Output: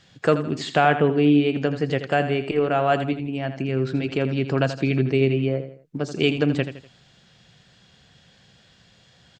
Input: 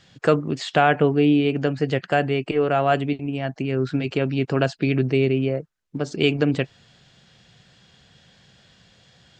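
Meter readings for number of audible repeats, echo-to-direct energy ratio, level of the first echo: 3, -10.5 dB, -11.0 dB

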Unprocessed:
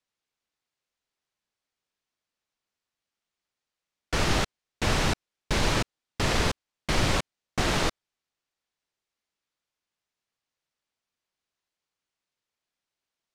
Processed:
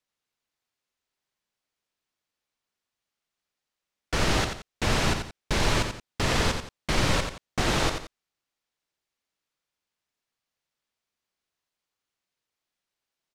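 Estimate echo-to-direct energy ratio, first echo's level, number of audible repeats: -6.5 dB, -7.0 dB, 2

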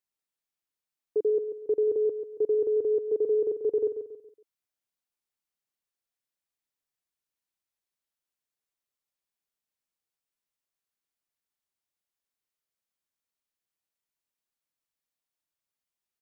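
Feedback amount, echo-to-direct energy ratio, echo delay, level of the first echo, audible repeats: 38%, -8.5 dB, 0.139 s, -9.0 dB, 4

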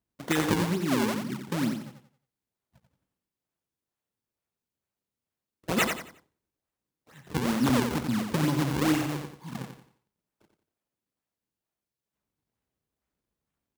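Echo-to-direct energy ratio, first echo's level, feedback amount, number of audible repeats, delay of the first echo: -6.0 dB, -6.5 dB, 32%, 3, 89 ms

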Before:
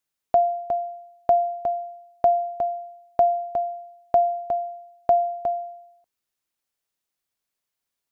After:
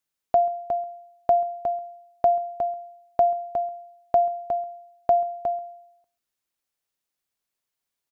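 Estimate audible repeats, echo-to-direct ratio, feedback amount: 1, -23.0 dB, no steady repeat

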